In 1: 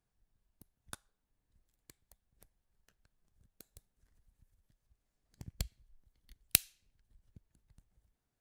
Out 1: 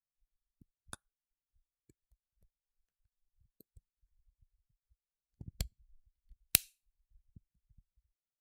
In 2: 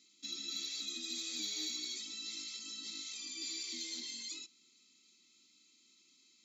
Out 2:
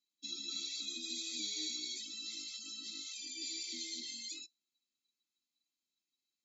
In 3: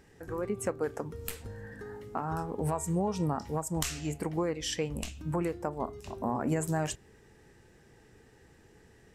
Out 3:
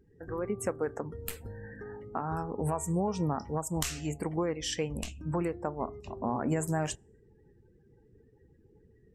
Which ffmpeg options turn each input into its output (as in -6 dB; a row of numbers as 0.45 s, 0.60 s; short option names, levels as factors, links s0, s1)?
-af "afftdn=nr=25:nf=-53"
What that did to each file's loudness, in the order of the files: 0.0 LU, -0.5 LU, 0.0 LU